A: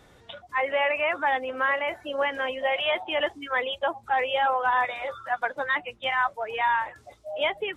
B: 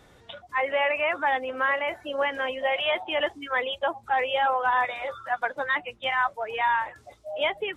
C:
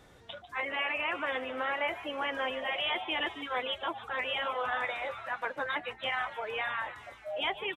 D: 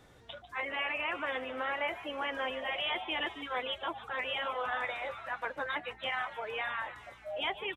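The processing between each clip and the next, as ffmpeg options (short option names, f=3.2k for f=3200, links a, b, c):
-af anull
-filter_complex "[0:a]afftfilt=real='re*lt(hypot(re,im),0.355)':imag='im*lt(hypot(re,im),0.355)':win_size=1024:overlap=0.75,asplit=7[a][b][c][d][e][f][g];[b]adelay=147,afreqshift=130,volume=-15dB[h];[c]adelay=294,afreqshift=260,volume=-19.4dB[i];[d]adelay=441,afreqshift=390,volume=-23.9dB[j];[e]adelay=588,afreqshift=520,volume=-28.3dB[k];[f]adelay=735,afreqshift=650,volume=-32.7dB[l];[g]adelay=882,afreqshift=780,volume=-37.2dB[m];[a][h][i][j][k][l][m]amix=inputs=7:normalize=0,volume=-2.5dB"
-af "aeval=exprs='val(0)+0.000631*(sin(2*PI*60*n/s)+sin(2*PI*2*60*n/s)/2+sin(2*PI*3*60*n/s)/3+sin(2*PI*4*60*n/s)/4+sin(2*PI*5*60*n/s)/5)':c=same,volume=-2dB"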